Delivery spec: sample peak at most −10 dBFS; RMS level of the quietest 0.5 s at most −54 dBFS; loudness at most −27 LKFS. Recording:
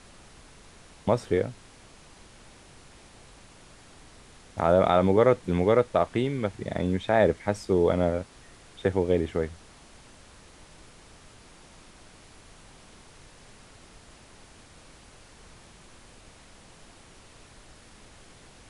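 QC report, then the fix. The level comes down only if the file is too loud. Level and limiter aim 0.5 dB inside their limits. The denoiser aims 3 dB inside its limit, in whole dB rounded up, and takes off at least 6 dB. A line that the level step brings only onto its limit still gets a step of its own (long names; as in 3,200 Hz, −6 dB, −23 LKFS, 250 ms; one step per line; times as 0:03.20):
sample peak −7.5 dBFS: out of spec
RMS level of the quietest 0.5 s −52 dBFS: out of spec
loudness −25.0 LKFS: out of spec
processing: level −2.5 dB
brickwall limiter −10.5 dBFS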